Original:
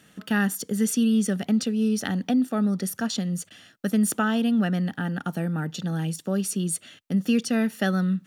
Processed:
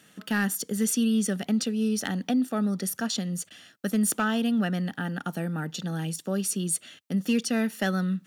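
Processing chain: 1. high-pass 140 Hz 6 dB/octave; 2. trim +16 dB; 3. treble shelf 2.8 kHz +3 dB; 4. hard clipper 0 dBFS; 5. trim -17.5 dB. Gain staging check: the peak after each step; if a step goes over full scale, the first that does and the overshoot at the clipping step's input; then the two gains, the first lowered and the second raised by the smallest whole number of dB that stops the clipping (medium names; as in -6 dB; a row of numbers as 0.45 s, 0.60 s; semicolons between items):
-11.5 dBFS, +4.5 dBFS, +5.5 dBFS, 0.0 dBFS, -17.5 dBFS; step 2, 5.5 dB; step 2 +10 dB, step 5 -11.5 dB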